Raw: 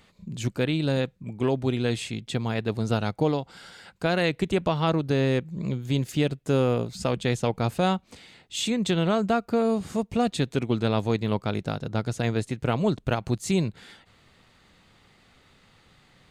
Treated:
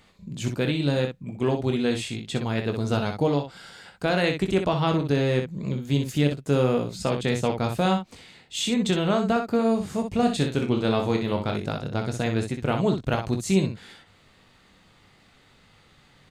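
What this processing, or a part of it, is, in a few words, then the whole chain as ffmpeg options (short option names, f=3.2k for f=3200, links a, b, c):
slapback doubling: -filter_complex "[0:a]asplit=3[a][b][c];[b]adelay=21,volume=-8dB[d];[c]adelay=62,volume=-7dB[e];[a][d][e]amix=inputs=3:normalize=0,asettb=1/sr,asplit=3[f][g][h];[f]atrim=end=10.164[i];[g]atrim=start=10.16:end=11.56,asetpts=PTS-STARTPTS,afade=t=in:d=0.004:c=qsin,afade=t=out:st=1.396:d=0.004:c=qsin,asplit=2[j][k];[k]adelay=32,volume=-8dB[l];[j][l]amix=inputs=2:normalize=0,atrim=end_sample=61740[m];[h]atrim=start=11.556[n];[i][m]acrossfade=d=0.004:c1=hsin:c2=qsin[o];[o][n]acrossfade=d=0.004:c1=qsin:c2=hsin"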